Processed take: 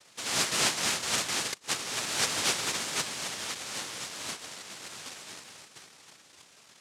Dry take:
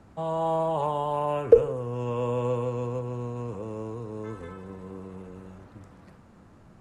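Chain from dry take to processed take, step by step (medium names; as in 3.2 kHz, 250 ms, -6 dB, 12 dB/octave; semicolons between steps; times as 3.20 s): inverted gate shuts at -10 dBFS, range -36 dB; LFO low-pass saw down 3.9 Hz 220–3200 Hz; noise-vocoded speech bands 1; trim -4.5 dB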